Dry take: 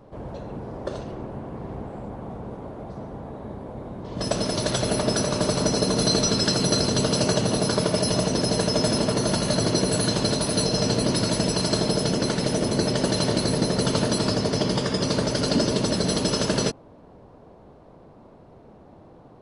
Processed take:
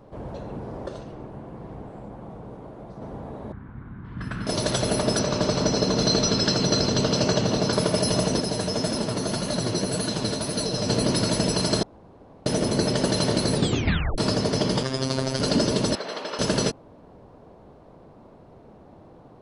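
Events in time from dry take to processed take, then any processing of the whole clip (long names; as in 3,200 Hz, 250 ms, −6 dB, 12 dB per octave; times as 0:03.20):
0:00.86–0:03.02: flanger 1.5 Hz, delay 5.7 ms, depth 1.1 ms, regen −66%
0:03.52–0:04.47: drawn EQ curve 130 Hz 0 dB, 280 Hz −6 dB, 590 Hz −23 dB, 1,500 Hz +5 dB, 2,800 Hz −8 dB, 6,200 Hz −26 dB, 10,000 Hz −20 dB
0:05.19–0:07.73: low-pass filter 6,600 Hz 24 dB per octave
0:08.40–0:10.89: flanger 1.8 Hz, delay 2.8 ms, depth 9.1 ms, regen +39%
0:11.83–0:12.46: fill with room tone
0:13.54: tape stop 0.64 s
0:14.83–0:15.40: phases set to zero 132 Hz
0:15.95–0:16.39: band-pass filter 670–2,600 Hz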